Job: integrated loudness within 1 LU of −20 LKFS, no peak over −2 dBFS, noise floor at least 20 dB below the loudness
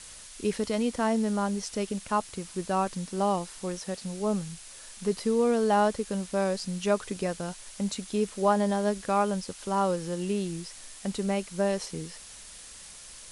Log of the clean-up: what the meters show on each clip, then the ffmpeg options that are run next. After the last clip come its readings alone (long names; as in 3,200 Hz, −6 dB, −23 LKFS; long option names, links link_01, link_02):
background noise floor −47 dBFS; target noise floor −49 dBFS; integrated loudness −29.0 LKFS; sample peak −11.5 dBFS; target loudness −20.0 LKFS
→ -af "afftdn=noise_reduction=6:noise_floor=-47"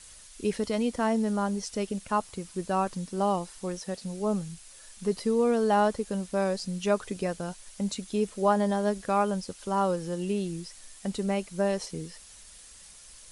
background noise floor −50 dBFS; integrated loudness −29.5 LKFS; sample peak −12.0 dBFS; target loudness −20.0 LKFS
→ -af "volume=9.5dB"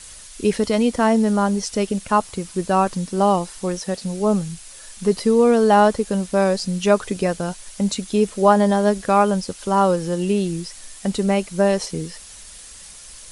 integrated loudness −20.0 LKFS; sample peak −2.5 dBFS; background noise floor −41 dBFS